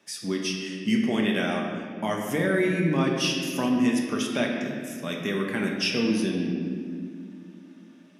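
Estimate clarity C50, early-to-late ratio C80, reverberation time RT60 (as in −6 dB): 2.5 dB, 3.5 dB, 2.2 s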